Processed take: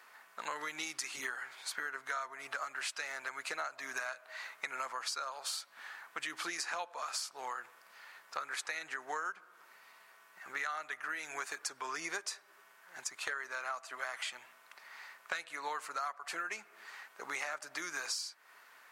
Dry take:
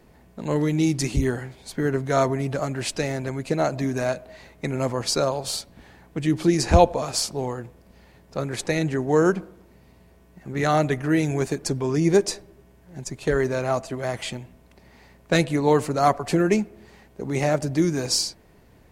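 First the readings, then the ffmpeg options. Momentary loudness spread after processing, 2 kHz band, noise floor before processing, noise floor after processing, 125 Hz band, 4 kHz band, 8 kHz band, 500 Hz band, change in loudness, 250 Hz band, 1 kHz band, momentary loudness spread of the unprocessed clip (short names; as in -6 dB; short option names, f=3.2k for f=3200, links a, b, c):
15 LU, -5.5 dB, -54 dBFS, -62 dBFS, under -40 dB, -11.0 dB, -11.0 dB, -26.5 dB, -16.0 dB, -33.0 dB, -13.0 dB, 12 LU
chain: -af "highpass=f=1.3k:t=q:w=2.8,acompressor=threshold=-37dB:ratio=10,volume=1dB"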